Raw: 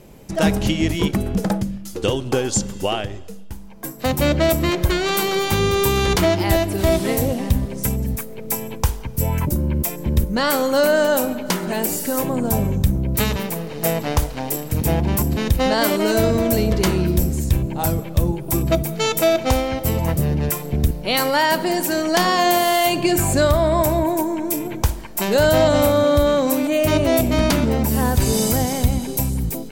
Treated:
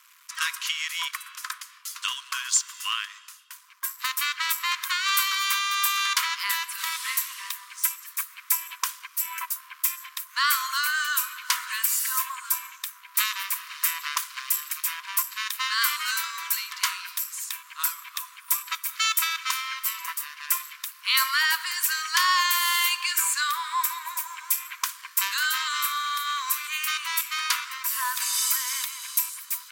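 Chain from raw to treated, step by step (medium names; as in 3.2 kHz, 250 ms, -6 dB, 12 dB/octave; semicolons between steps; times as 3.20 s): in parallel at +2 dB: compression, threshold -25 dBFS, peak gain reduction 13.5 dB; on the sum: crossover distortion -38.5 dBFS; brick-wall FIR high-pass 970 Hz; trim -3 dB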